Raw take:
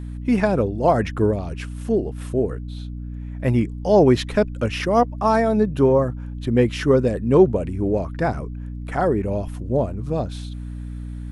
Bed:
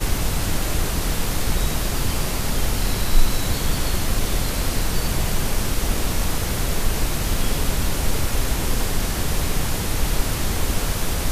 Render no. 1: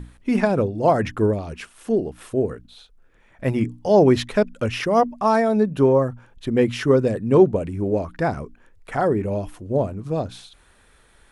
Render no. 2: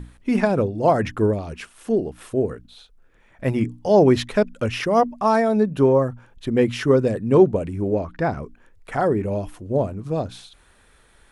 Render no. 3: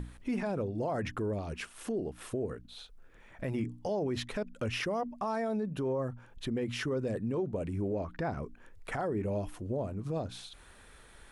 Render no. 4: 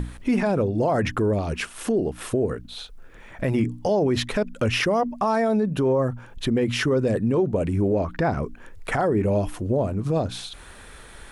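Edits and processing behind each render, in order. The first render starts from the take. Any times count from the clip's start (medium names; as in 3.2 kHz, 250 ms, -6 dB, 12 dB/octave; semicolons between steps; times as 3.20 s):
hum notches 60/120/180/240/300 Hz
7.94–8.43 s: distance through air 77 m
compression 1.5:1, threshold -42 dBFS, peak gain reduction 12 dB; peak limiter -25.5 dBFS, peak gain reduction 10 dB
trim +11.5 dB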